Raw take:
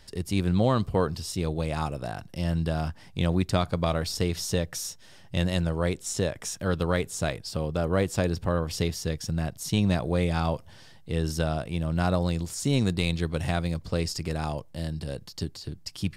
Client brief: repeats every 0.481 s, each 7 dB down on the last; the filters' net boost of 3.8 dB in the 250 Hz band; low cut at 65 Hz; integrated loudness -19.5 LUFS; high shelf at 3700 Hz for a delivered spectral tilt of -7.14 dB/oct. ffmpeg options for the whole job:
-af "highpass=65,equalizer=f=250:t=o:g=6,highshelf=f=3.7k:g=-8,aecho=1:1:481|962|1443|1924|2405:0.447|0.201|0.0905|0.0407|0.0183,volume=6.5dB"

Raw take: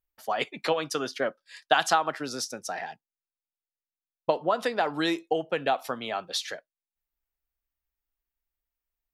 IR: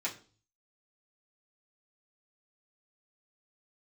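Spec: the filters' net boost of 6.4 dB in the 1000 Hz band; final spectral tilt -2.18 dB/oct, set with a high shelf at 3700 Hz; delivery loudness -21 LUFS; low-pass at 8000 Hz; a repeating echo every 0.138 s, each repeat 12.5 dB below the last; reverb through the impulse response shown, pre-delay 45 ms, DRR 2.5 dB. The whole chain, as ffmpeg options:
-filter_complex "[0:a]lowpass=8k,equalizer=f=1k:t=o:g=8.5,highshelf=f=3.7k:g=6.5,aecho=1:1:138|276|414:0.237|0.0569|0.0137,asplit=2[a][b];[1:a]atrim=start_sample=2205,adelay=45[c];[b][c]afir=irnorm=-1:irlink=0,volume=-6.5dB[d];[a][d]amix=inputs=2:normalize=0,volume=1.5dB"

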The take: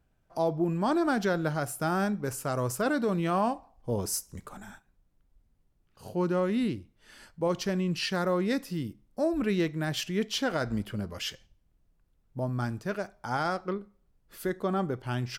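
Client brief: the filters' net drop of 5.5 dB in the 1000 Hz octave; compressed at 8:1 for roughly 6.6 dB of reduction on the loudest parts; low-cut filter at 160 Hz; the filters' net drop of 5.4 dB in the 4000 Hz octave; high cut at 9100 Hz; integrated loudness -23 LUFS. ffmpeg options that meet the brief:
-af "highpass=160,lowpass=9.1k,equalizer=f=1k:t=o:g=-7.5,equalizer=f=4k:t=o:g=-7,acompressor=threshold=-31dB:ratio=8,volume=14dB"

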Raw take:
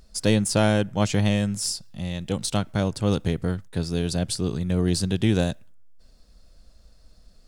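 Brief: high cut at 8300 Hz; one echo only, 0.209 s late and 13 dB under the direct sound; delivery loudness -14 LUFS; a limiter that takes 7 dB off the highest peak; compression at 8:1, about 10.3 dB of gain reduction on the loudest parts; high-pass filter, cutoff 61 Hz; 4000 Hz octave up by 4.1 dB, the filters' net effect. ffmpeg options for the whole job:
-af "highpass=61,lowpass=8.3k,equalizer=f=4k:t=o:g=5.5,acompressor=threshold=-26dB:ratio=8,alimiter=limit=-21dB:level=0:latency=1,aecho=1:1:209:0.224,volume=19dB"

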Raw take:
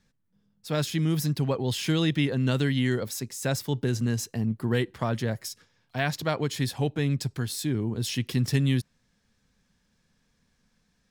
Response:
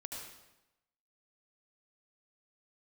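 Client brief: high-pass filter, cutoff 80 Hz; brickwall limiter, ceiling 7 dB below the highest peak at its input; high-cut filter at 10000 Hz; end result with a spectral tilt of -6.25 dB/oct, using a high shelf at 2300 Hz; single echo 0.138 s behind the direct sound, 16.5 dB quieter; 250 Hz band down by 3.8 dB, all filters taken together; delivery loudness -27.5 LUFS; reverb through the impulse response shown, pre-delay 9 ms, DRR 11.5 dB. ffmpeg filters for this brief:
-filter_complex "[0:a]highpass=80,lowpass=10k,equalizer=f=250:t=o:g=-5,highshelf=f=2.3k:g=-7,alimiter=limit=-21dB:level=0:latency=1,aecho=1:1:138:0.15,asplit=2[a][b];[1:a]atrim=start_sample=2205,adelay=9[c];[b][c]afir=irnorm=-1:irlink=0,volume=-10dB[d];[a][d]amix=inputs=2:normalize=0,volume=4.5dB"

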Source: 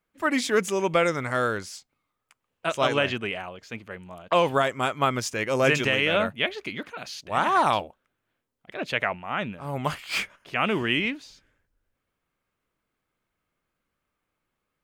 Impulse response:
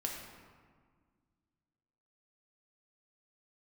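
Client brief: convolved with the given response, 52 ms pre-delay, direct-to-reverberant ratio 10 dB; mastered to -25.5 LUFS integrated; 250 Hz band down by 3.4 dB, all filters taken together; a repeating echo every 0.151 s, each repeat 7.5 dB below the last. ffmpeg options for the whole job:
-filter_complex "[0:a]equalizer=f=250:t=o:g=-4.5,aecho=1:1:151|302|453|604|755:0.422|0.177|0.0744|0.0312|0.0131,asplit=2[a][b];[1:a]atrim=start_sample=2205,adelay=52[c];[b][c]afir=irnorm=-1:irlink=0,volume=-11.5dB[d];[a][d]amix=inputs=2:normalize=0,volume=-0.5dB"

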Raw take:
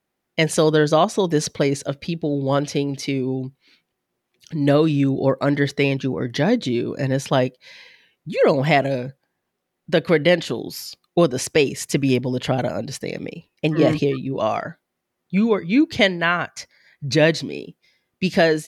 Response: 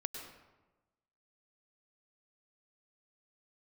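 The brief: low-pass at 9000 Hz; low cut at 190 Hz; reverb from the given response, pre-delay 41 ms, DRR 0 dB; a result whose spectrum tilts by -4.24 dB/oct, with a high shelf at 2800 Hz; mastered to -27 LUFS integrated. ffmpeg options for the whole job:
-filter_complex "[0:a]highpass=190,lowpass=9k,highshelf=f=2.8k:g=5.5,asplit=2[a][b];[1:a]atrim=start_sample=2205,adelay=41[c];[b][c]afir=irnorm=-1:irlink=0,volume=0.5dB[d];[a][d]amix=inputs=2:normalize=0,volume=-9.5dB"

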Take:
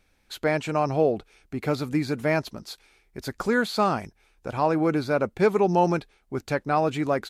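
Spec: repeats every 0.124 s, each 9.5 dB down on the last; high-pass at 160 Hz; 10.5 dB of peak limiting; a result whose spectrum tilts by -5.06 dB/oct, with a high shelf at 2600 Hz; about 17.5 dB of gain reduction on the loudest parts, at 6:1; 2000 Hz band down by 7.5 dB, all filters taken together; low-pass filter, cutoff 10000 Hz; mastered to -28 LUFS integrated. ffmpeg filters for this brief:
-af "highpass=160,lowpass=10k,equalizer=f=2k:t=o:g=-7.5,highshelf=f=2.6k:g=-8,acompressor=threshold=-36dB:ratio=6,alimiter=level_in=10dB:limit=-24dB:level=0:latency=1,volume=-10dB,aecho=1:1:124|248|372|496:0.335|0.111|0.0365|0.012,volume=17dB"

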